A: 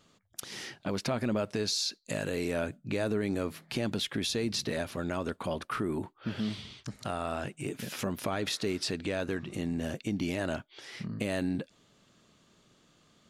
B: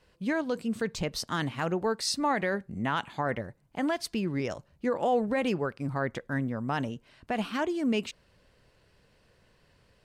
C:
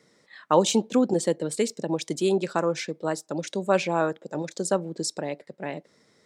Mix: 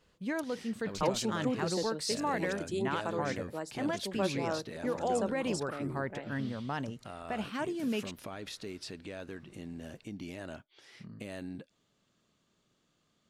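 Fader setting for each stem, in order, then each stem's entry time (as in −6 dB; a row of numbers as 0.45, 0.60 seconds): −10.5, −5.5, −11.5 decibels; 0.00, 0.00, 0.50 seconds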